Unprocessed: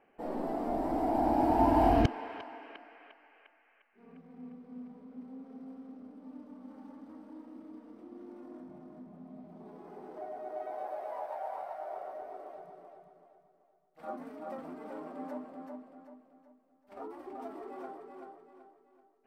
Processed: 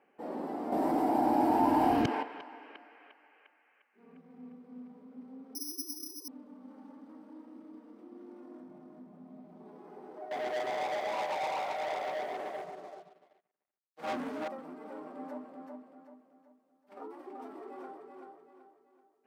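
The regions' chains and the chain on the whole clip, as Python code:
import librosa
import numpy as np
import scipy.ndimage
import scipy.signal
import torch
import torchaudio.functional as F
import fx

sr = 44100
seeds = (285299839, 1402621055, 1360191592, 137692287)

y = fx.chain(x, sr, fx.high_shelf(hz=7900.0, db=8.0),
    fx.env_flatten(amount_pct=50), at=(0.72, 2.23))
y = fx.chain(y, sr, fx.sine_speech(),
    fx.resample_bad(factor=8, down='none', up='zero_stuff'), at=(5.55, 6.28))
y = fx.chain(y, sr, fx.leveller(passes=5),
    fx.high_shelf(hz=8300.0, db=-4.0),
    fx.upward_expand(threshold_db=-52.0, expansion=2.5), at=(10.31, 14.48))
y = scipy.signal.sosfilt(scipy.signal.butter(2, 170.0, 'highpass', fs=sr, output='sos'), y)
y = fx.high_shelf(y, sr, hz=10000.0, db=-3.5)
y = fx.notch(y, sr, hz=670.0, q=12.0)
y = F.gain(torch.from_numpy(y), -1.0).numpy()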